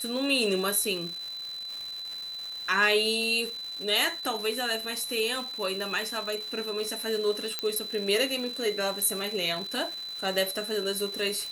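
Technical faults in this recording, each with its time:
surface crackle 390 per second −35 dBFS
whistle 4,000 Hz −35 dBFS
0:07.59: click −13 dBFS

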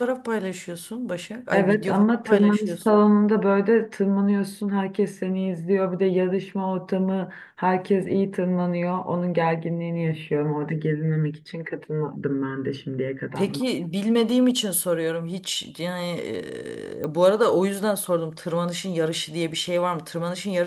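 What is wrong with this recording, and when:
0:17.04: click −18 dBFS

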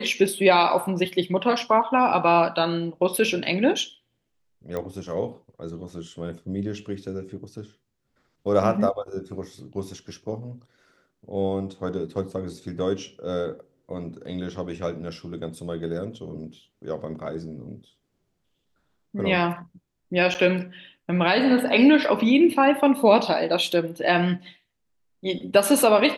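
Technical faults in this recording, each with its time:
0:04.77: click −18 dBFS
0:20.34–0:20.35: drop-out 8.8 ms

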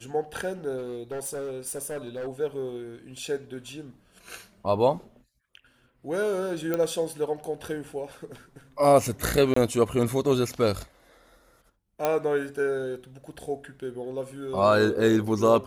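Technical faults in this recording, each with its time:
0:00.77–0:02.28: clipping −30 dBFS
0:06.74: click −14 dBFS
0:09.54–0:09.56: drop-out 24 ms
0:12.05: click −11 dBFS

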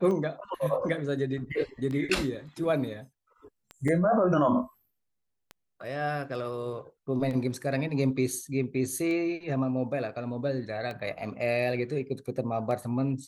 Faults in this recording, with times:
scratch tick 33 1/3 rpm −25 dBFS
0:03.88: drop-out 3.6 ms

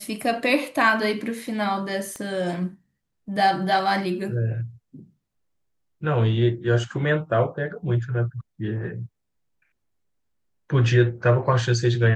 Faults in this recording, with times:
0:02.16: click −22 dBFS

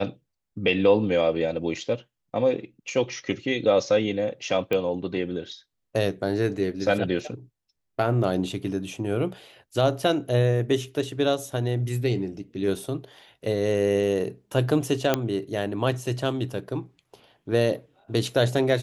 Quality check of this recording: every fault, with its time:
0:04.73: click −14 dBFS
0:15.14: click −7 dBFS

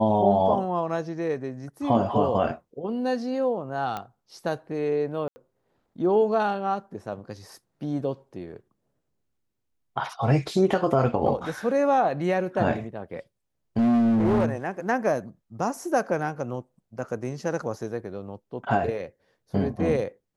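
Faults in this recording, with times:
0:03.97: click −18 dBFS
0:05.28–0:05.36: drop-out 80 ms
0:13.78–0:14.49: clipping −18 dBFS

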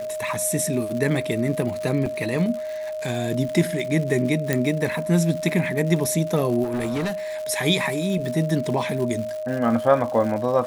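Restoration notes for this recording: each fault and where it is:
surface crackle 170 per second −30 dBFS
whistle 620 Hz −27 dBFS
0:02.06: drop-out 2.4 ms
0:04.53: click −7 dBFS
0:06.63–0:07.13: clipping −21.5 dBFS

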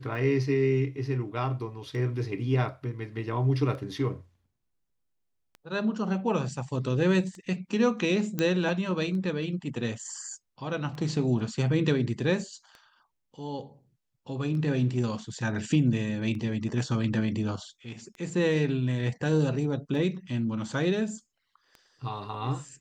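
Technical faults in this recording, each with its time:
scratch tick 33 1/3 rpm −30 dBFS
0:08.39: click −14 dBFS

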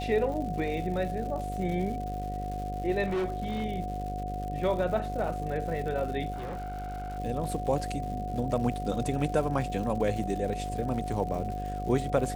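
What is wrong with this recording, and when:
mains buzz 50 Hz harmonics 14 −36 dBFS
surface crackle 200 per second −38 dBFS
whistle 730 Hz −35 dBFS
0:03.05–0:03.64: clipping −26 dBFS
0:06.32–0:07.19: clipping −33 dBFS

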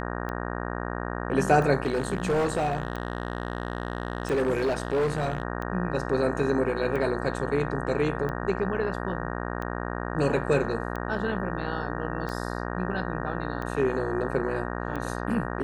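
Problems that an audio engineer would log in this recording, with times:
mains buzz 60 Hz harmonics 31 −32 dBFS
scratch tick 45 rpm −22 dBFS
0:01.83–0:05.43: clipping −21 dBFS

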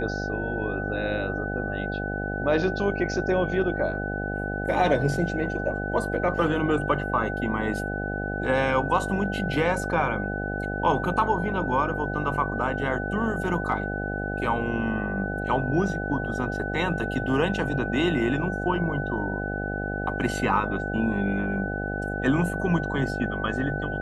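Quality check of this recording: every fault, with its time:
mains buzz 50 Hz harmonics 16 −31 dBFS
whistle 1,500 Hz −32 dBFS

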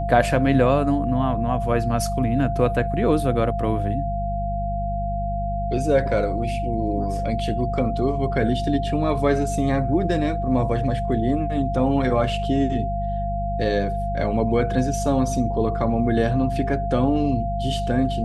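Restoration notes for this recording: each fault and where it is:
mains hum 50 Hz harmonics 4 −27 dBFS
whistle 690 Hz −26 dBFS

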